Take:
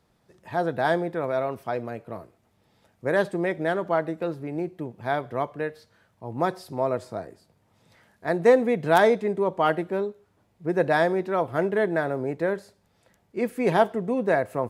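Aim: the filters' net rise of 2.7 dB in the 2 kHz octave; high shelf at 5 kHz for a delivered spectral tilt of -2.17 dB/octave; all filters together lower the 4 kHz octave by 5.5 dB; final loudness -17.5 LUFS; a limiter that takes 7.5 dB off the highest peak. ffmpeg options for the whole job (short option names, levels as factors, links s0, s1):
-af "equalizer=f=2000:t=o:g=5.5,equalizer=f=4000:t=o:g=-6.5,highshelf=f=5000:g=-6.5,volume=2.82,alimiter=limit=0.668:level=0:latency=1"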